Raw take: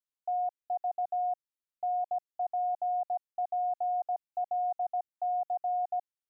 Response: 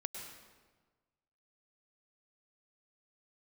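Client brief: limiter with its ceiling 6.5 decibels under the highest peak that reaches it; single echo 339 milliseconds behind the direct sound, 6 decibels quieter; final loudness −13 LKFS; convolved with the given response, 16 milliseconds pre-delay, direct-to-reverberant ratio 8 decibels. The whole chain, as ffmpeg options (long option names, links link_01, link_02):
-filter_complex "[0:a]alimiter=level_in=9.5dB:limit=-24dB:level=0:latency=1,volume=-9.5dB,aecho=1:1:339:0.501,asplit=2[link_01][link_02];[1:a]atrim=start_sample=2205,adelay=16[link_03];[link_02][link_03]afir=irnorm=-1:irlink=0,volume=-7.5dB[link_04];[link_01][link_04]amix=inputs=2:normalize=0,volume=29.5dB"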